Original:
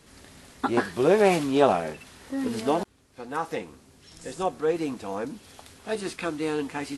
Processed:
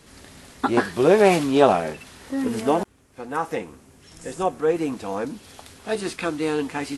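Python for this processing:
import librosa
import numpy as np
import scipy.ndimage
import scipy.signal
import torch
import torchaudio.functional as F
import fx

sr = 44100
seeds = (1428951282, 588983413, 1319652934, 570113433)

y = fx.peak_eq(x, sr, hz=4200.0, db=-6.0, octaves=0.76, at=(2.42, 4.93))
y = y * librosa.db_to_amplitude(4.0)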